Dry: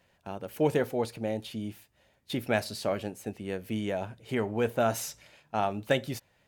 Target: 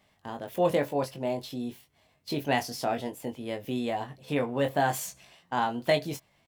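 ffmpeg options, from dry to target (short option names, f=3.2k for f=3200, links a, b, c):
-filter_complex "[0:a]asetrate=50951,aresample=44100,atempo=0.865537,asplit=2[a][b];[b]adelay=21,volume=-6dB[c];[a][c]amix=inputs=2:normalize=0"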